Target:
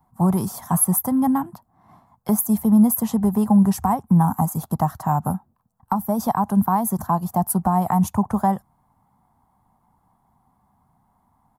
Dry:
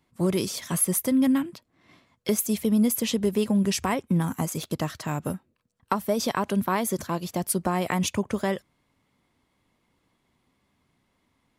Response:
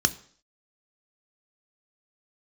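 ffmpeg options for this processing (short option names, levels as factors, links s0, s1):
-filter_complex "[0:a]firequalizer=gain_entry='entry(210,0);entry(300,-11);entry(540,-12);entry(770,10);entry(1300,-4);entry(2400,-24);entry(12000,-1)':delay=0.05:min_phase=1,acrossover=split=310|3500[s0][s1][s2];[s1]alimiter=limit=0.106:level=0:latency=1:release=370[s3];[s0][s3][s2]amix=inputs=3:normalize=0,volume=2.51"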